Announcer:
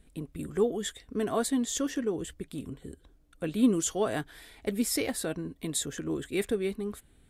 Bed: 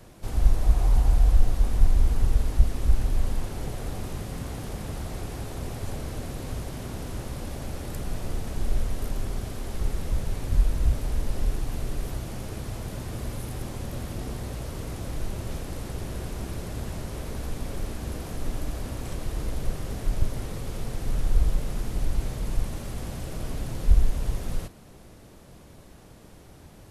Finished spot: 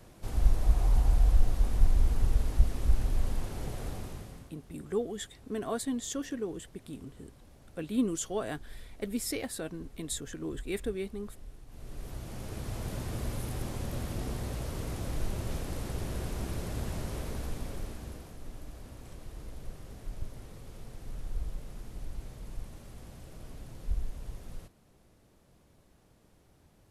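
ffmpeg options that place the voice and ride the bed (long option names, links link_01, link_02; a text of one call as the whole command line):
ffmpeg -i stem1.wav -i stem2.wav -filter_complex "[0:a]adelay=4350,volume=-5dB[link_01];[1:a]volume=15.5dB,afade=type=out:start_time=3.86:duration=0.67:silence=0.133352,afade=type=in:start_time=11.67:duration=1.21:silence=0.1,afade=type=out:start_time=17.11:duration=1.24:silence=0.251189[link_02];[link_01][link_02]amix=inputs=2:normalize=0" out.wav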